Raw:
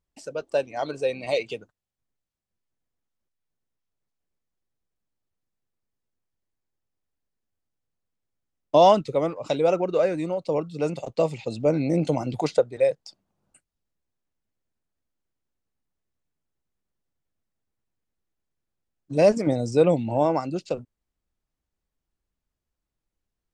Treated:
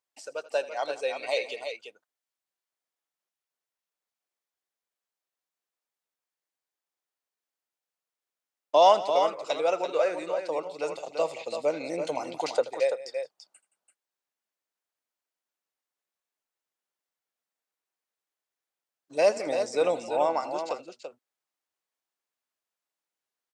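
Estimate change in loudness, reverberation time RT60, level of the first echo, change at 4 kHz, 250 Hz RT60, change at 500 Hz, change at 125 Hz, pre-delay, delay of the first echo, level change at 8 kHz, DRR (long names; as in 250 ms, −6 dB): −4.0 dB, no reverb audible, −17.5 dB, +1.0 dB, no reverb audible, −4.0 dB, −23.5 dB, no reverb audible, 81 ms, can't be measured, no reverb audible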